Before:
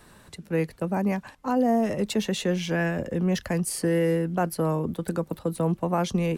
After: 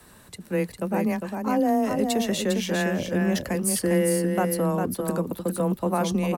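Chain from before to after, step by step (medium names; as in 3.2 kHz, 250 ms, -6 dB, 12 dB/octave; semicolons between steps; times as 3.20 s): treble shelf 10 kHz +11.5 dB; on a send: delay 403 ms -5 dB; on the sum: frequency shift +14 Hz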